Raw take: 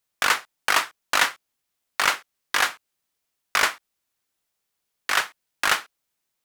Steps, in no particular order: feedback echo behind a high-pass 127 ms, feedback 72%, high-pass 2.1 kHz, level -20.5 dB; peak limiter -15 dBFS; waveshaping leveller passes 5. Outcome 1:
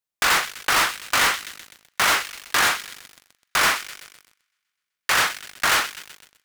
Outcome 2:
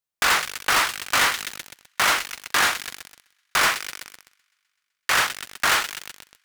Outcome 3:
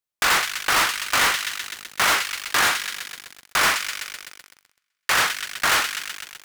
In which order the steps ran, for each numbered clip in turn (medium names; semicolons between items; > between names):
peak limiter > feedback echo behind a high-pass > waveshaping leveller; feedback echo behind a high-pass > waveshaping leveller > peak limiter; feedback echo behind a high-pass > peak limiter > waveshaping leveller